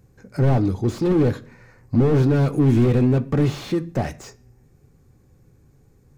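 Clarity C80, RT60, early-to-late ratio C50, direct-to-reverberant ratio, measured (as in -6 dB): 24.5 dB, 0.45 s, 19.5 dB, 8.5 dB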